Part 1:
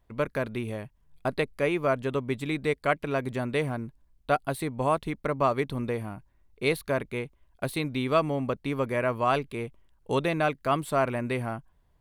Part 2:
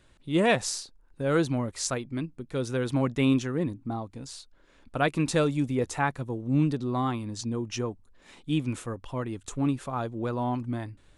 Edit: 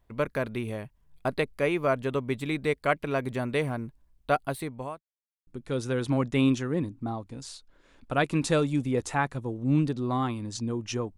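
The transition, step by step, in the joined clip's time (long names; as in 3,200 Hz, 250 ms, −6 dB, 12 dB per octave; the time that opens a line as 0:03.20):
part 1
0:04.25–0:05.02: fade out equal-power
0:05.02–0:05.47: silence
0:05.47: continue with part 2 from 0:02.31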